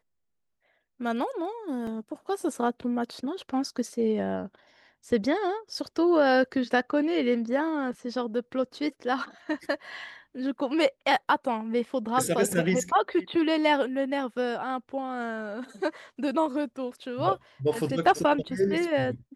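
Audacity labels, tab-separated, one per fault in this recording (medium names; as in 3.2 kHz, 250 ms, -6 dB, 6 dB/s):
1.870000	1.870000	dropout 3.2 ms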